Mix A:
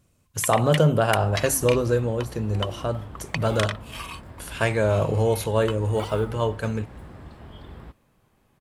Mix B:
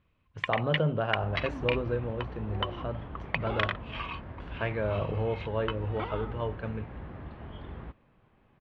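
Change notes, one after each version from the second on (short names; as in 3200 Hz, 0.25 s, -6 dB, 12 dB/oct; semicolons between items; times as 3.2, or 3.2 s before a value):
speech -9.0 dB; master: add LPF 3100 Hz 24 dB/oct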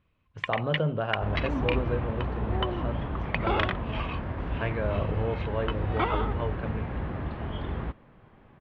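second sound +9.5 dB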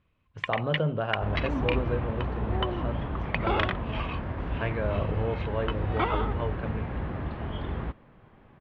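none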